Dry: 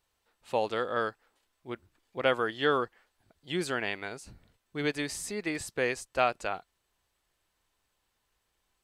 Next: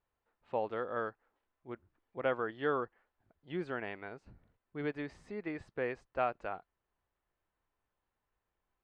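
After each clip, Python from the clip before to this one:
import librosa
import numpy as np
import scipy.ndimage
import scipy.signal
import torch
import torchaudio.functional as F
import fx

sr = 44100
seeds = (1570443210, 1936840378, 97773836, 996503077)

y = scipy.signal.sosfilt(scipy.signal.butter(2, 1700.0, 'lowpass', fs=sr, output='sos'), x)
y = y * 10.0 ** (-5.5 / 20.0)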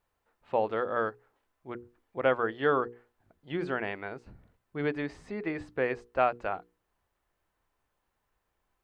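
y = fx.hum_notches(x, sr, base_hz=60, count=8)
y = y * 10.0 ** (7.0 / 20.0)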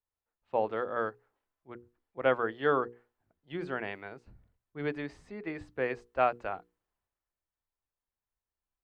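y = fx.band_widen(x, sr, depth_pct=40)
y = y * 10.0 ** (-3.0 / 20.0)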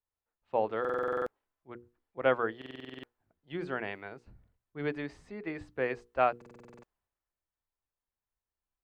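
y = fx.buffer_glitch(x, sr, at_s=(0.8, 2.57, 6.37), block=2048, repeats=9)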